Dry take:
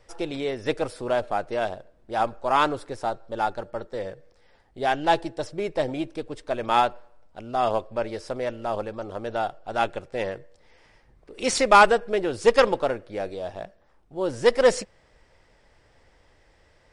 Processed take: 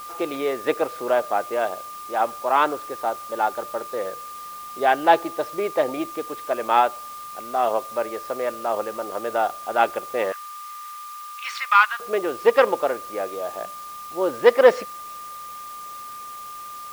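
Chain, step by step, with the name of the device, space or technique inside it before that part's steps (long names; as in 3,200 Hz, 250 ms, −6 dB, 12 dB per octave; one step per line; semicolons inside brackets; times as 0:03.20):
shortwave radio (band-pass filter 330–2,600 Hz; amplitude tremolo 0.2 Hz, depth 31%; steady tone 1,200 Hz −40 dBFS; white noise bed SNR 22 dB)
0:10.32–0:12.00: elliptic high-pass filter 1,100 Hz, stop band 70 dB
level +5.5 dB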